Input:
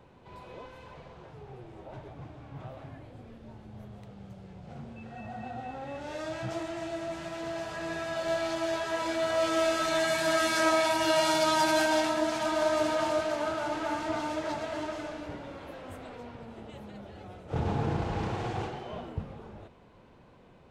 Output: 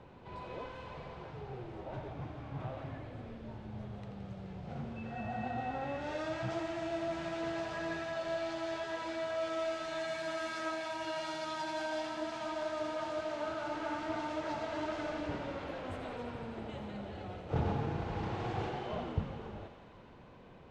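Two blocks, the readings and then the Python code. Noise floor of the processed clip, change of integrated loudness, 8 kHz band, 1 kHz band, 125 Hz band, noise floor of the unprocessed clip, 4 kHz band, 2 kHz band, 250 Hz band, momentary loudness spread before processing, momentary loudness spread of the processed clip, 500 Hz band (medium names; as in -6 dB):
-54 dBFS, -9.5 dB, -16.0 dB, -7.5 dB, -2.5 dB, -56 dBFS, -11.0 dB, -8.5 dB, -5.5 dB, 23 LU, 10 LU, -7.5 dB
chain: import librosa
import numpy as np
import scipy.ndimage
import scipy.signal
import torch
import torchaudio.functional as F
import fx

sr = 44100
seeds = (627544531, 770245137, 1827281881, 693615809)

p1 = fx.rider(x, sr, range_db=10, speed_s=0.5)
p2 = fx.air_absorb(p1, sr, metres=85.0)
p3 = p2 + fx.echo_thinned(p2, sr, ms=85, feedback_pct=84, hz=600.0, wet_db=-9.0, dry=0)
y = p3 * librosa.db_to_amplitude(-8.0)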